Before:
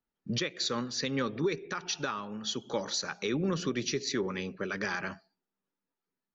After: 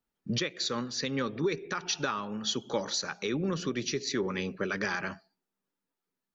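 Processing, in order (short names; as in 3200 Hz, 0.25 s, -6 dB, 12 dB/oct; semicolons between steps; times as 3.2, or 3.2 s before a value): vocal rider 0.5 s; gain +1 dB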